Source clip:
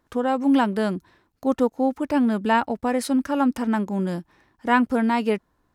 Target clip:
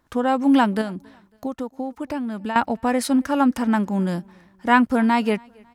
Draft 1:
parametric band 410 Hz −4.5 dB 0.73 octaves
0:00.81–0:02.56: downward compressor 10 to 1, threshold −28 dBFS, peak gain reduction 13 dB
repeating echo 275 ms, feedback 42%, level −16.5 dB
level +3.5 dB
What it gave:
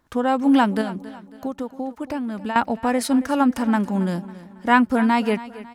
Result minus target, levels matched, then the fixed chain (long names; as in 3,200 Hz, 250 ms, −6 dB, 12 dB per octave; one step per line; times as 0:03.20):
echo-to-direct +11.5 dB
parametric band 410 Hz −4.5 dB 0.73 octaves
0:00.81–0:02.56: downward compressor 10 to 1, threshold −28 dBFS, peak gain reduction 13 dB
repeating echo 275 ms, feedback 42%, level −28 dB
level +3.5 dB